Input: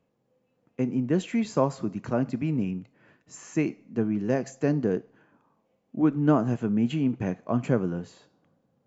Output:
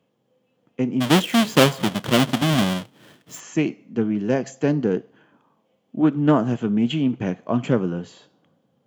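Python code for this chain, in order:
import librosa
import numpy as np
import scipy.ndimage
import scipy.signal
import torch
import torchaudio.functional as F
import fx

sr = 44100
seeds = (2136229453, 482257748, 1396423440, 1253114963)

y = fx.halfwave_hold(x, sr, at=(1.0, 3.39), fade=0.02)
y = scipy.signal.sosfilt(scipy.signal.butter(2, 110.0, 'highpass', fs=sr, output='sos'), y)
y = fx.peak_eq(y, sr, hz=3200.0, db=10.0, octaves=0.3)
y = fx.doppler_dist(y, sr, depth_ms=0.14)
y = F.gain(torch.from_numpy(y), 4.5).numpy()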